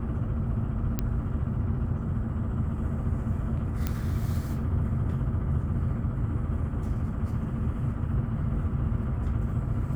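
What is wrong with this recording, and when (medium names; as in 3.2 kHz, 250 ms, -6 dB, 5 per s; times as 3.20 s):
0.99 s: pop -14 dBFS
3.87 s: pop -14 dBFS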